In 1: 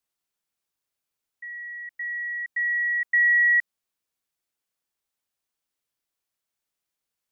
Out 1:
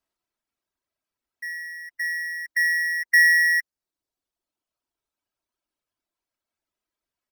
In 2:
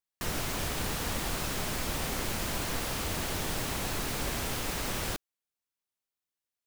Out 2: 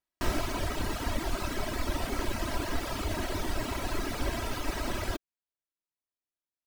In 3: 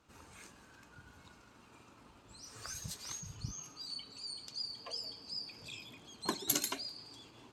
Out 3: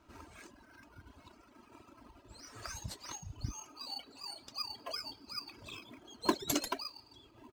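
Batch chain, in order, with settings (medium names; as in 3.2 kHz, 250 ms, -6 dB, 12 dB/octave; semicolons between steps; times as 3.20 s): reverb removal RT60 2 s; treble shelf 5.7 kHz -9.5 dB; comb 3.1 ms, depth 60%; in parallel at -7 dB: sample-and-hold 12×; on the sum: trim +1.5 dB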